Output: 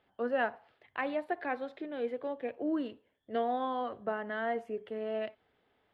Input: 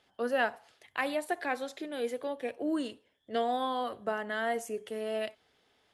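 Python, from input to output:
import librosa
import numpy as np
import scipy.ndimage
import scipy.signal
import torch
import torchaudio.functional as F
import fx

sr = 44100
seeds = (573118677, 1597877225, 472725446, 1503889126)

y = fx.air_absorb(x, sr, metres=420.0)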